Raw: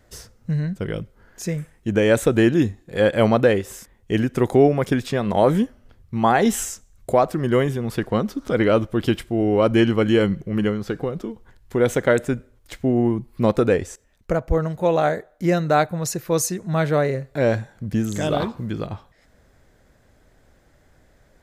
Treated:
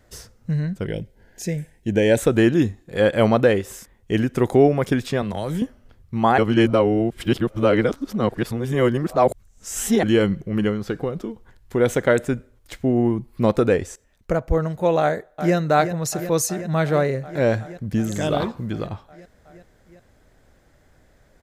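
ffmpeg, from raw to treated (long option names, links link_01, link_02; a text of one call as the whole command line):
ffmpeg -i in.wav -filter_complex "[0:a]asettb=1/sr,asplit=3[link_01][link_02][link_03];[link_01]atrim=end=0.864[link_04];[link_02]atrim=start=0.86:end=2.18,asetpts=PTS-STARTPTS,afade=type=in:duration=0.004:curve=qsin,afade=type=out:start_time=1.316:duration=0.004:curve=qsin,asuperstop=centerf=1200:order=4:qfactor=1.8[link_05];[link_03]atrim=start=2.176[link_06];[link_04][link_05]acrossfade=duration=0.004:curve1=hsin:curve2=qsin[link_07];[link_07][link_06]acrossfade=duration=0.004:curve1=qsin:curve2=hsin,asettb=1/sr,asplit=3[link_08][link_09][link_10];[link_08]atrim=end=5.224[link_11];[link_09]atrim=start=5.22:end=5.62,asetpts=PTS-STARTPTS,afade=type=in:duration=0.004:curve=qsin,afade=type=out:start_time=0.396:duration=0.004:curve=qsin,acrossover=split=130|3000[link_12][link_13][link_14];[link_13]acompressor=threshold=-26dB:ratio=4:attack=3.2:release=140:knee=2.83:detection=peak[link_15];[link_12][link_15][link_14]amix=inputs=3:normalize=0[link_16];[link_10]atrim=start=5.616[link_17];[link_11][link_16]acrossfade=duration=0.004:curve1=hsin:curve2=qsin[link_18];[link_18][link_17]acrossfade=duration=0.004:curve1=qsin:curve2=hsin,asplit=2[link_19][link_20];[link_20]afade=type=in:start_time=15.01:duration=0.01,afade=type=out:start_time=15.55:duration=0.01,aecho=0:1:370|740|1110|1480|1850|2220|2590|2960|3330|3700|4070|4440:0.316228|0.252982|0.202386|0.161909|0.129527|0.103622|0.0828972|0.0663178|0.0530542|0.0424434|0.0339547|0.0271638[link_21];[link_19][link_21]amix=inputs=2:normalize=0,asplit=3[link_22][link_23][link_24];[link_22]atrim=end=6.382[link_25];[link_23]atrim=start=6.378:end=10.032,asetpts=PTS-STARTPTS,areverse[link_26];[link_24]atrim=start=10.028[link_27];[link_25][link_26]acrossfade=duration=0.004:curve1=hsin:curve2=hsin[link_28];[link_28][link_27]acrossfade=duration=0.004:curve1=hsin:curve2=hsin" out.wav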